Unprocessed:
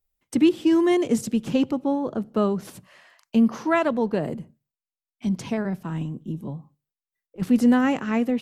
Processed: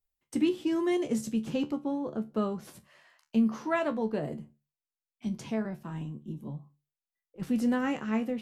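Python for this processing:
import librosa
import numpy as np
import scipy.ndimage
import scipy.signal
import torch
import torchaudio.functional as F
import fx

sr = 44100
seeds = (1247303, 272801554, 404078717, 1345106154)

y = fx.comb_fb(x, sr, f0_hz=73.0, decay_s=0.19, harmonics='all', damping=0.0, mix_pct=80)
y = y * 10.0 ** (-2.5 / 20.0)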